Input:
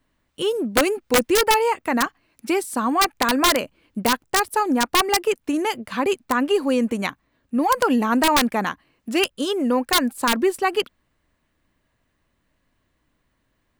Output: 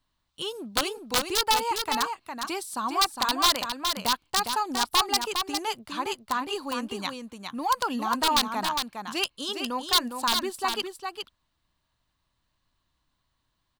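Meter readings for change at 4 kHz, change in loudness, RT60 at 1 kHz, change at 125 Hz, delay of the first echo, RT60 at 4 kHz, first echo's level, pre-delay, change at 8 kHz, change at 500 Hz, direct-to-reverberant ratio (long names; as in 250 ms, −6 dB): 0.0 dB, −6.0 dB, no reverb audible, −9.5 dB, 408 ms, no reverb audible, −6.0 dB, no reverb audible, −3.5 dB, −13.0 dB, no reverb audible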